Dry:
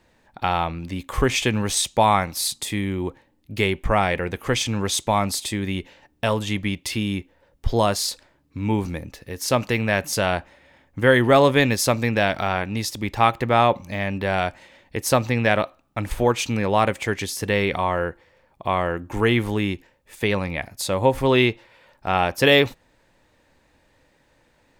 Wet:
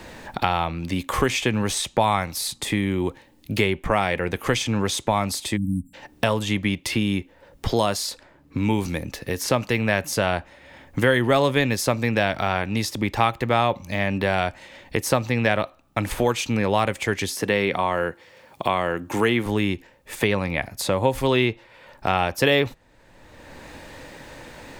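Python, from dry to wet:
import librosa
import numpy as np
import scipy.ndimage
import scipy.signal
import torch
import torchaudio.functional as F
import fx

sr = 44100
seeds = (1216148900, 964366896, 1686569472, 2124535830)

y = fx.spec_erase(x, sr, start_s=5.57, length_s=0.37, low_hz=290.0, high_hz=7300.0)
y = fx.highpass(y, sr, hz=160.0, slope=12, at=(17.36, 19.46))
y = fx.band_squash(y, sr, depth_pct=70)
y = y * 10.0 ** (-1.0 / 20.0)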